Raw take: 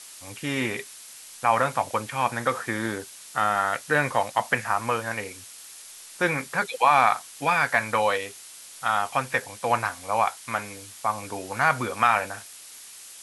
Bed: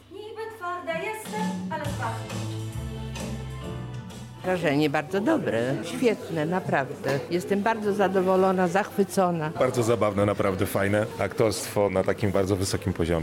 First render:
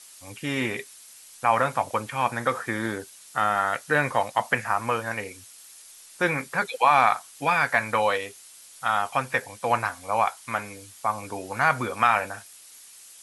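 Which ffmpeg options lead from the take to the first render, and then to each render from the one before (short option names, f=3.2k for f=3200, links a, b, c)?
-af "afftdn=nr=6:nf=-45"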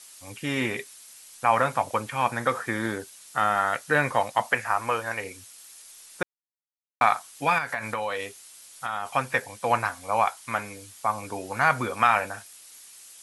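-filter_complex "[0:a]asettb=1/sr,asplit=3[a][b][c];[a]atrim=end=4.494[d];[b]atrim=start=4.49:end=5.24,asetpts=PTS-STARTPTS,afade=t=in:d=0.004:c=qsin,afade=t=out:st=0.746:d=0.004:c=qsin,equalizer=f=170:t=o:w=0.93:g=-11.5[e];[c]atrim=start=5.236[f];[d][e]acrossfade=d=0.004:c1=hsin:c2=qsin[g];[g][f]acrossfade=d=0.004:c1=qsin:c2=hsin,asettb=1/sr,asplit=3[h][i][j];[h]atrim=end=7.584[k];[i]atrim=start=7.58:end=9.09,asetpts=PTS-STARTPTS,afade=t=in:d=0.004:c=qsin,afade=t=out:st=1.506:d=0.004:c=qsin,acompressor=threshold=-25dB:ratio=6:attack=3.2:release=140:knee=1:detection=peak[l];[j]atrim=start=9.086[m];[k][l]acrossfade=d=0.004:c1=hsin:c2=qsin[n];[n][m]acrossfade=d=0.004:c1=qsin:c2=hsin,asplit=3[o][p][q];[o]atrim=end=6.23,asetpts=PTS-STARTPTS,afade=t=out:st=6.226:d=0.004:c=hsin[r];[p]atrim=start=6.23:end=7.01,asetpts=PTS-STARTPTS,volume=0[s];[q]atrim=start=7.01,asetpts=PTS-STARTPTS,afade=t=in:d=0.004:c=hsin[t];[r][s][t]concat=n=3:v=0:a=1"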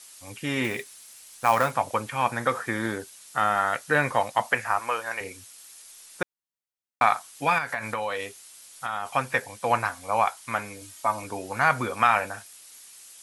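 -filter_complex "[0:a]asettb=1/sr,asplit=3[a][b][c];[a]atrim=end=0.644[d];[b]atrim=start=0.64:end=1.71,asetpts=PTS-STARTPTS,afade=t=in:d=0.004:c=qsin,afade=t=out:st=1.066:d=0.004:c=qsin,acrusher=bits=4:mode=log:mix=0:aa=0.000001[e];[c]atrim=start=1.706[f];[d][e]acrossfade=d=0.004:c1=hsin:c2=qsin[g];[g][f]acrossfade=d=0.004:c1=qsin:c2=hsin,asettb=1/sr,asplit=3[h][i][j];[h]atrim=end=4.794[k];[i]atrim=start=4.79:end=5.21,asetpts=PTS-STARTPTS,afade=t=in:d=0.004:c=qsin,afade=t=out:st=0.416:d=0.004:c=qsin,highpass=f=520:p=1[l];[j]atrim=start=5.206[m];[k][l]acrossfade=d=0.004:c1=hsin:c2=qsin[n];[n][m]acrossfade=d=0.004:c1=qsin:c2=hsin,asettb=1/sr,asplit=3[o][p][q];[o]atrim=end=10.814[r];[p]atrim=start=10.81:end=11.24,asetpts=PTS-STARTPTS,afade=t=in:d=0.004:c=qsin,afade=t=out:st=0.426:d=0.004:c=qsin,aecho=1:1:3.2:0.65,atrim=end_sample=18963[s];[q]atrim=start=11.236[t];[r][s]acrossfade=d=0.004:c1=hsin:c2=qsin[u];[u][t]acrossfade=d=0.004:c1=qsin:c2=hsin"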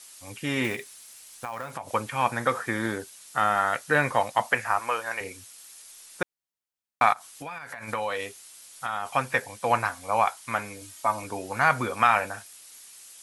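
-filter_complex "[0:a]asettb=1/sr,asplit=3[a][b][c];[a]atrim=end=0.754[d];[b]atrim=start=0.75:end=1.94,asetpts=PTS-STARTPTS,afade=t=in:d=0.004:c=qsin,afade=t=out:st=1.186:d=0.004:c=qsin,acompressor=threshold=-31dB:ratio=6:attack=3.2:release=140:knee=1:detection=peak[e];[c]atrim=start=1.936[f];[d][e]acrossfade=d=0.004:c1=hsin:c2=qsin[g];[g][f]acrossfade=d=0.004:c1=qsin:c2=hsin,asplit=3[h][i][j];[h]afade=t=out:st=7.12:d=0.02[k];[i]acompressor=threshold=-35dB:ratio=5:attack=3.2:release=140:knee=1:detection=peak,afade=t=in:st=7.12:d=0.02,afade=t=out:st=7.87:d=0.02[l];[j]afade=t=in:st=7.87:d=0.02[m];[k][l][m]amix=inputs=3:normalize=0"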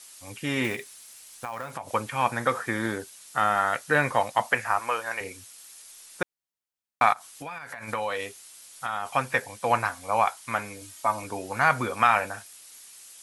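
-af anull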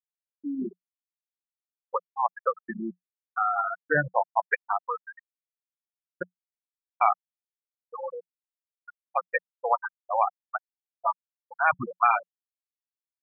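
-af "afftfilt=real='re*gte(hypot(re,im),0.251)':imag='im*gte(hypot(re,im),0.251)':win_size=1024:overlap=0.75,equalizer=f=180:t=o:w=0.27:g=10"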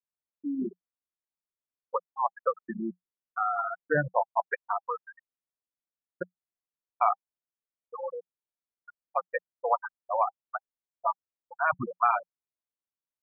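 -af "lowpass=1.3k,bandreject=f=800:w=12"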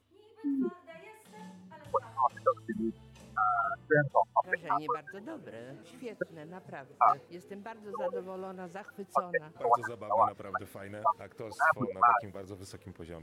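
-filter_complex "[1:a]volume=-20.5dB[a];[0:a][a]amix=inputs=2:normalize=0"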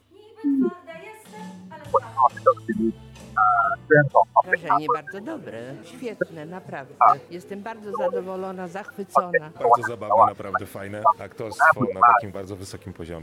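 -af "volume=10.5dB,alimiter=limit=-3dB:level=0:latency=1"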